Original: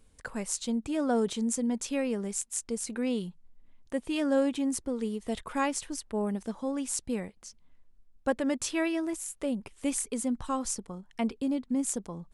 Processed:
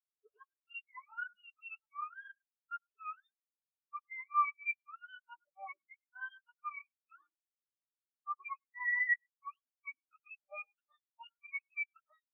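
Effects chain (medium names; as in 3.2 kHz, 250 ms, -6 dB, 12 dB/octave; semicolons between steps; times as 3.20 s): spectrum inverted on a logarithmic axis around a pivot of 800 Hz; steep high-pass 210 Hz; reverse; compression 10:1, threshold -41 dBFS, peak gain reduction 19 dB; reverse; three-band isolator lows -16 dB, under 500 Hz, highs -22 dB, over 2.6 kHz; on a send at -9.5 dB: reverberation RT60 0.15 s, pre-delay 95 ms; on the sum: spectral contrast expander 4:1; trim +12.5 dB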